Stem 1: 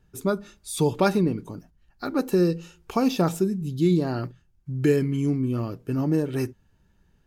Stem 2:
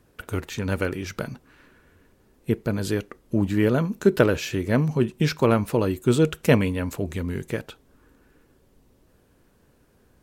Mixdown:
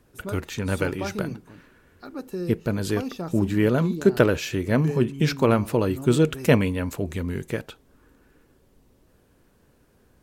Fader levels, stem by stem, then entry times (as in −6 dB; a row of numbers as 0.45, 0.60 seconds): −10.5, 0.0 decibels; 0.00, 0.00 seconds